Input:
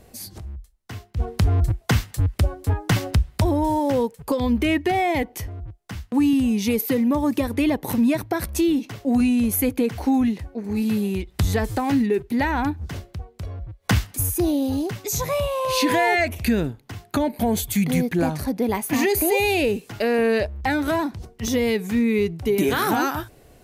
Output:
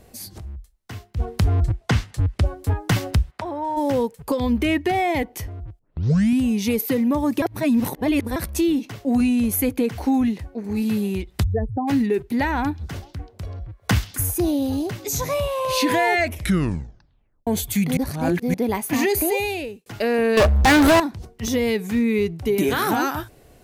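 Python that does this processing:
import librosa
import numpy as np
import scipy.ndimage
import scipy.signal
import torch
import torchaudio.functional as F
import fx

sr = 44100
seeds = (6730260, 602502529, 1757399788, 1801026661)

y = fx.air_absorb(x, sr, metres=52.0, at=(1.62, 2.46))
y = fx.bandpass_q(y, sr, hz=1200.0, q=0.89, at=(3.3, 3.76), fade=0.02)
y = fx.spec_expand(y, sr, power=2.7, at=(11.42, 11.87), fade=0.02)
y = fx.echo_stepped(y, sr, ms=133, hz=4200.0, octaves=-1.4, feedback_pct=70, wet_db=-11.5, at=(12.62, 15.79))
y = fx.leveller(y, sr, passes=5, at=(20.37, 21.0))
y = fx.edit(y, sr, fx.tape_start(start_s=5.79, length_s=0.61),
    fx.reverse_span(start_s=7.42, length_s=0.94),
    fx.tape_stop(start_s=16.31, length_s=1.16),
    fx.reverse_span(start_s=17.97, length_s=0.57),
    fx.fade_out_span(start_s=19.2, length_s=0.66), tone=tone)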